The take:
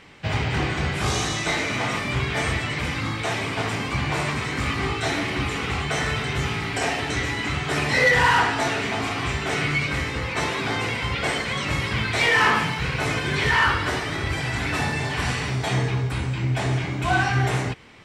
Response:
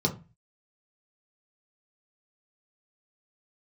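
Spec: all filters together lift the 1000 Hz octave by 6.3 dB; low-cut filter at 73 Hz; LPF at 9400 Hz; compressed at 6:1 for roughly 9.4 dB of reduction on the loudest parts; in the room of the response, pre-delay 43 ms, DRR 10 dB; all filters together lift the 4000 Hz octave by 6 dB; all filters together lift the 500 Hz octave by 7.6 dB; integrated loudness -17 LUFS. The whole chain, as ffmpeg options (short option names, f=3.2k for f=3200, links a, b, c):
-filter_complex "[0:a]highpass=73,lowpass=9.4k,equalizer=f=500:t=o:g=8,equalizer=f=1k:t=o:g=5,equalizer=f=4k:t=o:g=7.5,acompressor=threshold=-19dB:ratio=6,asplit=2[a][b];[1:a]atrim=start_sample=2205,adelay=43[c];[b][c]afir=irnorm=-1:irlink=0,volume=-19dB[d];[a][d]amix=inputs=2:normalize=0,volume=5dB"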